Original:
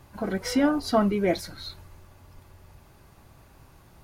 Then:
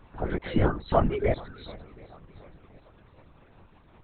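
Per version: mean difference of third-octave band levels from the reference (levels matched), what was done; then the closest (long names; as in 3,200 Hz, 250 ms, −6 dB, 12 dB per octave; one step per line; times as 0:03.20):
7.5 dB: reverb reduction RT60 0.86 s
feedback echo with a long and a short gap by turns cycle 734 ms, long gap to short 1.5 to 1, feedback 40%, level −21.5 dB
linear-prediction vocoder at 8 kHz whisper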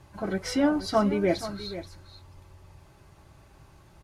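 2.5 dB: low-pass filter 10,000 Hz 12 dB per octave
notch comb filter 240 Hz
on a send: single-tap delay 479 ms −13 dB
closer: second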